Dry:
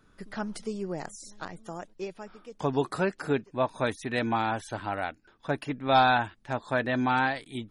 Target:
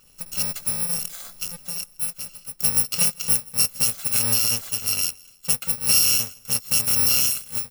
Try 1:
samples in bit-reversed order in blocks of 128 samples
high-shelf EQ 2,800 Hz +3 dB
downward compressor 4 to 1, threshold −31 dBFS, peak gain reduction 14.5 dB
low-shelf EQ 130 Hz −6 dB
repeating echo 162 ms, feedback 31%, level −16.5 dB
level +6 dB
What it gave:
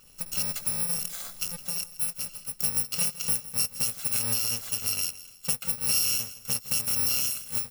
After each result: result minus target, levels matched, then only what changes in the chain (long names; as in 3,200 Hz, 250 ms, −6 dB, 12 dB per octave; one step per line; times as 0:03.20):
downward compressor: peak gain reduction +7.5 dB; echo-to-direct +9 dB
change: downward compressor 4 to 1, threshold −21 dBFS, peak gain reduction 7 dB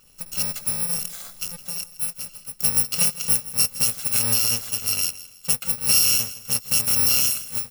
echo-to-direct +9 dB
change: repeating echo 162 ms, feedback 31%, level −25.5 dB